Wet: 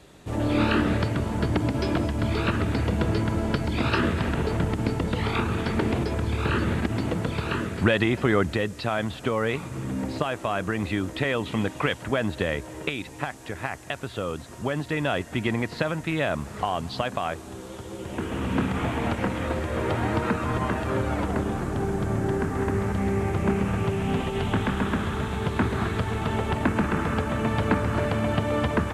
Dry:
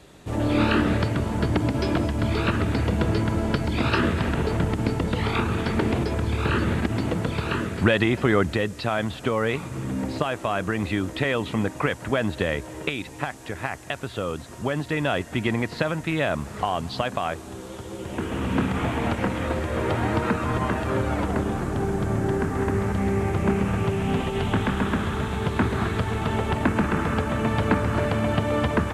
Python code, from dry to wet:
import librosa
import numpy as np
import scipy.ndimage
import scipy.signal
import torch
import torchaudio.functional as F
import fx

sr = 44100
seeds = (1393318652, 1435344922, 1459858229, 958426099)

y = fx.peak_eq(x, sr, hz=3200.0, db=7.0, octaves=0.75, at=(11.52, 12.03))
y = y * 10.0 ** (-1.5 / 20.0)